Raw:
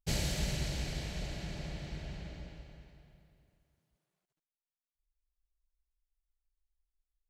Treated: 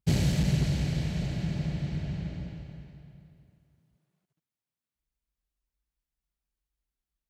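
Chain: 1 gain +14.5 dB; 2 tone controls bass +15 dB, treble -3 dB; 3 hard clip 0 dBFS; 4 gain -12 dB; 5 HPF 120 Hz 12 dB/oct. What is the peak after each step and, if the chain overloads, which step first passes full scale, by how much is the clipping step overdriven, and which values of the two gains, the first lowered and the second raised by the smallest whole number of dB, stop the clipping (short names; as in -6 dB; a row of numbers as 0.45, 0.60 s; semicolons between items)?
-4.5, +5.0, 0.0, -12.0, -13.5 dBFS; step 2, 5.0 dB; step 1 +9.5 dB, step 4 -7 dB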